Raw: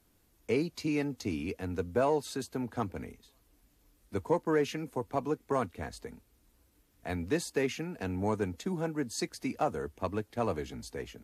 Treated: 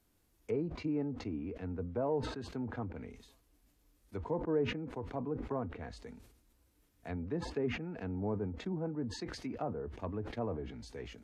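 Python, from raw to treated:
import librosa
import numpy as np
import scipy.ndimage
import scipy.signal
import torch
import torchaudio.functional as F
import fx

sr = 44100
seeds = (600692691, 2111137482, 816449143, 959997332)

y = fx.hpss(x, sr, part='percussive', gain_db=-5)
y = fx.env_lowpass_down(y, sr, base_hz=920.0, full_db=-32.0)
y = fx.sustainer(y, sr, db_per_s=68.0)
y = y * 10.0 ** (-3.0 / 20.0)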